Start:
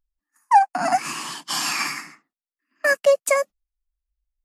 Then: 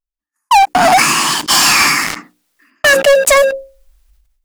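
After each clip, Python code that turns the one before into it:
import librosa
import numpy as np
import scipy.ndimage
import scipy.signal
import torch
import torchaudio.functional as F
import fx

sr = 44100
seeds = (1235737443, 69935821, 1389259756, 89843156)

y = fx.hum_notches(x, sr, base_hz=60, count=9)
y = fx.leveller(y, sr, passes=5)
y = fx.sustainer(y, sr, db_per_s=56.0)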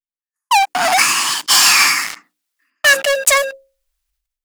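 y = fx.tilt_shelf(x, sr, db=-7.0, hz=670.0)
y = fx.upward_expand(y, sr, threshold_db=-27.0, expansion=1.5)
y = y * librosa.db_to_amplitude(-5.5)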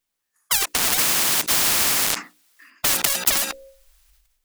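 y = fx.spectral_comp(x, sr, ratio=10.0)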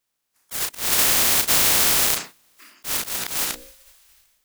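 y = fx.spec_clip(x, sr, under_db=22)
y = fx.doubler(y, sr, ms=34.0, db=-7)
y = fx.auto_swell(y, sr, attack_ms=192.0)
y = y * librosa.db_to_amplitude(1.5)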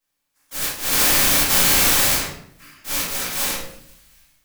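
y = fx.room_shoebox(x, sr, seeds[0], volume_m3=130.0, walls='mixed', distance_m=2.2)
y = y * librosa.db_to_amplitude(-5.5)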